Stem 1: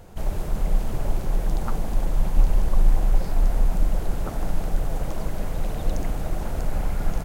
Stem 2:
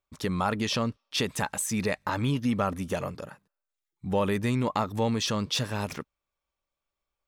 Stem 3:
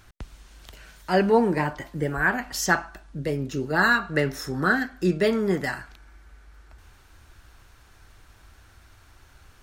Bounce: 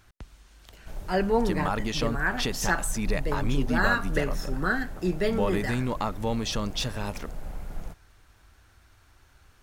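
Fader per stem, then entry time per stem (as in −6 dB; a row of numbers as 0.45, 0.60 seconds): −12.0, −2.0, −5.0 decibels; 0.70, 1.25, 0.00 seconds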